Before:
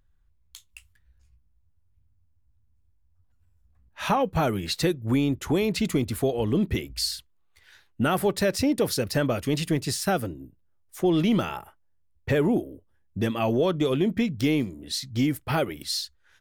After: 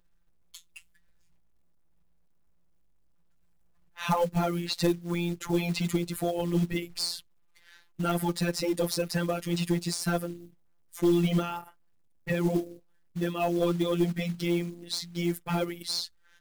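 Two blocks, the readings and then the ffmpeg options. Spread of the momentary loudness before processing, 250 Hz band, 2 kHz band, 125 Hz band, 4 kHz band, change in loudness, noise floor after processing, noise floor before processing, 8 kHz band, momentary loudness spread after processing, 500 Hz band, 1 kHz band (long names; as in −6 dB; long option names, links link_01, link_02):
7 LU, −4.0 dB, −4.5 dB, −2.5 dB, −3.0 dB, −3.5 dB, −63 dBFS, −64 dBFS, −3.5 dB, 10 LU, −4.5 dB, −4.0 dB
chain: -af "afftfilt=real='hypot(re,im)*cos(PI*b)':imag='0':win_size=1024:overlap=0.75,acrusher=bits=5:mode=log:mix=0:aa=0.000001,aeval=exprs='0.335*(cos(1*acos(clip(val(0)/0.335,-1,1)))-cos(1*PI/2))+0.0188*(cos(4*acos(clip(val(0)/0.335,-1,1)))-cos(4*PI/2))+0.0299*(cos(5*acos(clip(val(0)/0.335,-1,1)))-cos(5*PI/2))':channel_layout=same,volume=-1.5dB"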